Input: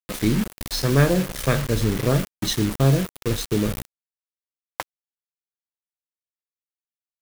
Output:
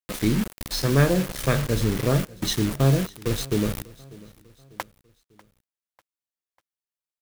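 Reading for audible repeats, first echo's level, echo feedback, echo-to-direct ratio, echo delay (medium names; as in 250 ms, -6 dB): 2, -22.0 dB, 45%, -21.0 dB, 595 ms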